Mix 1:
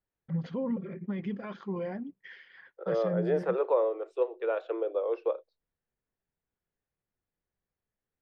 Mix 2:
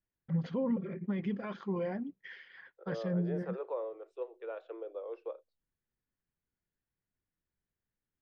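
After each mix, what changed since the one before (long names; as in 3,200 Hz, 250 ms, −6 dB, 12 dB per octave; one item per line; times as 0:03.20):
second voice −11.5 dB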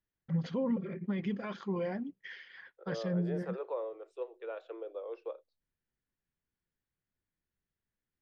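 master: add high-shelf EQ 4,200 Hz +11 dB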